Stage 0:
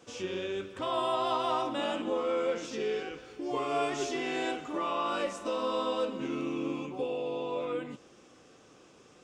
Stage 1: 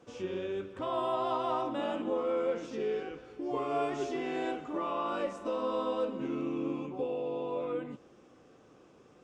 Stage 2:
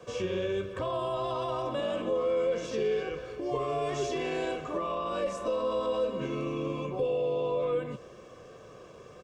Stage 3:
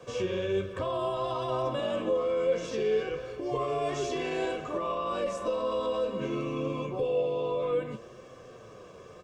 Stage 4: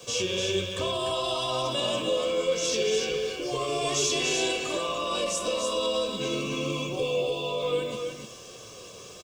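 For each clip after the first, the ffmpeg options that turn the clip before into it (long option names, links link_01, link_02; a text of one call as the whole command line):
ffmpeg -i in.wav -af "highshelf=frequency=2100:gain=-12" out.wav
ffmpeg -i in.wav -filter_complex "[0:a]acrossover=split=200|3000[link_01][link_02][link_03];[link_02]acompressor=threshold=-42dB:ratio=2[link_04];[link_01][link_04][link_03]amix=inputs=3:normalize=0,aecho=1:1:1.8:0.65,acrossover=split=500[link_05][link_06];[link_06]alimiter=level_in=13dB:limit=-24dB:level=0:latency=1:release=19,volume=-13dB[link_07];[link_05][link_07]amix=inputs=2:normalize=0,volume=8.5dB" out.wav
ffmpeg -i in.wav -af "flanger=delay=7.6:depth=3.7:regen=67:speed=0.6:shape=sinusoidal,volume=5dB" out.wav
ffmpeg -i in.wav -af "aexciter=amount=3.2:drive=9:freq=2600,aecho=1:1:295:0.562" out.wav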